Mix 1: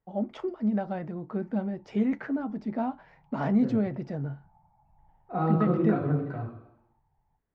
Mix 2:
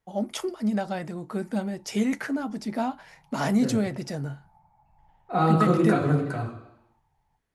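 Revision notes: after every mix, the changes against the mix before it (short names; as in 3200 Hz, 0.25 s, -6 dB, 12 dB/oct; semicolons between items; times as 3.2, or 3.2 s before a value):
second voice +3.0 dB; master: remove tape spacing loss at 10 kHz 42 dB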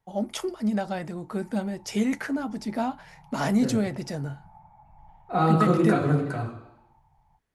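background +8.5 dB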